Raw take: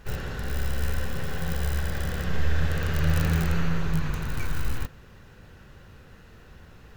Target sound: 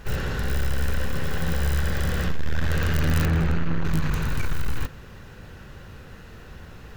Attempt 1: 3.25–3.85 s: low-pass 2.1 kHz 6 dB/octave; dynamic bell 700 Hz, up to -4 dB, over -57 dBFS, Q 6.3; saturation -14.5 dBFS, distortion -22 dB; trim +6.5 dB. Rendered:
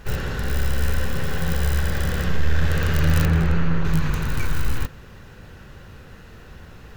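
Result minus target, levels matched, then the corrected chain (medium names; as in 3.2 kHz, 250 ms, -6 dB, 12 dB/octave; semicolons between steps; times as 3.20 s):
saturation: distortion -10 dB
3.25–3.85 s: low-pass 2.1 kHz 6 dB/octave; dynamic bell 700 Hz, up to -4 dB, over -57 dBFS, Q 6.3; saturation -22.5 dBFS, distortion -12 dB; trim +6.5 dB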